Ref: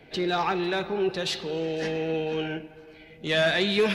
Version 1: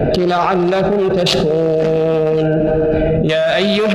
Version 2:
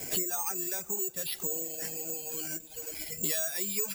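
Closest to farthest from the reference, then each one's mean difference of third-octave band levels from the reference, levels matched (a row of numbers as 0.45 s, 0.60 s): 1, 2; 6.0 dB, 15.5 dB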